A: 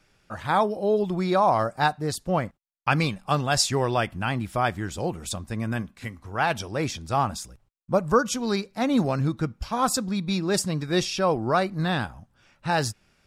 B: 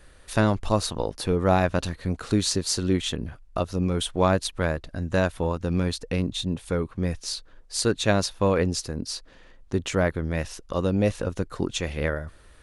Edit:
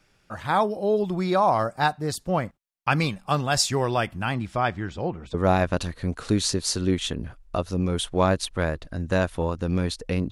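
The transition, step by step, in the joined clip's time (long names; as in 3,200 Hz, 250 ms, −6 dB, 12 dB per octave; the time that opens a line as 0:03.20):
A
0:04.34–0:05.34: low-pass filter 8,600 Hz → 1,800 Hz
0:05.34: continue with B from 0:01.36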